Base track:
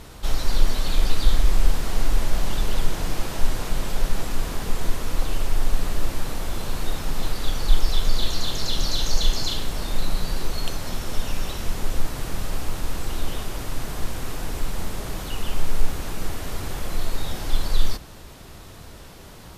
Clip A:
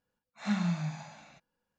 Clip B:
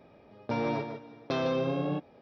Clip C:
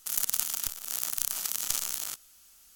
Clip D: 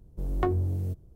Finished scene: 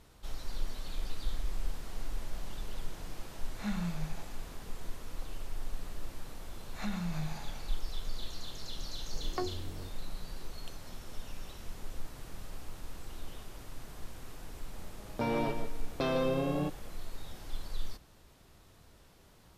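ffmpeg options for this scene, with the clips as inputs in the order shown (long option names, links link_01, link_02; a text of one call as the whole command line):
ffmpeg -i bed.wav -i cue0.wav -i cue1.wav -i cue2.wav -i cue3.wav -filter_complex "[1:a]asplit=2[link_01][link_02];[0:a]volume=-17dB[link_03];[link_02]acompressor=threshold=-33dB:ratio=6:attack=3.2:release=140:knee=1:detection=peak[link_04];[4:a]highpass=frequency=270:poles=1[link_05];[link_01]atrim=end=1.78,asetpts=PTS-STARTPTS,volume=-6dB,afade=type=in:duration=0.004:curve=hsin,afade=type=out:start_time=1.776:duration=0.004:curve=hsin,adelay=139797S[link_06];[link_04]atrim=end=1.78,asetpts=PTS-STARTPTS,volume=-0.5dB,afade=type=in:duration=0.004:curve=hsin,afade=type=out:start_time=1.776:duration=0.004:curve=hsin,adelay=6370[link_07];[link_05]atrim=end=1.15,asetpts=PTS-STARTPTS,volume=-6.5dB,afade=type=in:duration=0.004:curve=hsin,afade=type=out:start_time=1.146:duration=0.004:curve=hsin,adelay=8950[link_08];[2:a]atrim=end=2.21,asetpts=PTS-STARTPTS,volume=-1.5dB,afade=type=in:duration=0.004:curve=hsin,afade=type=out:start_time=2.206:duration=0.004:curve=hsin,adelay=14700[link_09];[link_03][link_06][link_07][link_08][link_09]amix=inputs=5:normalize=0" out.wav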